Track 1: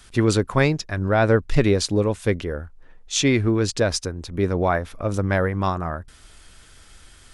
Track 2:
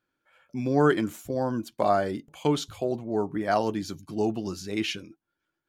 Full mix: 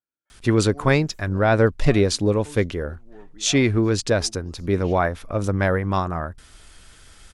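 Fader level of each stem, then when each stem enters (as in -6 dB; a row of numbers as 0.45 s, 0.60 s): +0.5 dB, -19.0 dB; 0.30 s, 0.00 s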